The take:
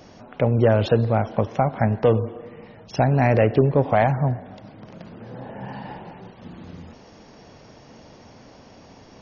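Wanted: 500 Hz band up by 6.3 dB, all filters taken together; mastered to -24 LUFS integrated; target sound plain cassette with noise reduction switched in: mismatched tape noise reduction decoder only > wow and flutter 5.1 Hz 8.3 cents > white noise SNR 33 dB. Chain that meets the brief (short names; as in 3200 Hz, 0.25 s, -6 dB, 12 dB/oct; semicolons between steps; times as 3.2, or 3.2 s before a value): bell 500 Hz +7.5 dB; mismatched tape noise reduction decoder only; wow and flutter 5.1 Hz 8.3 cents; white noise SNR 33 dB; gain -7.5 dB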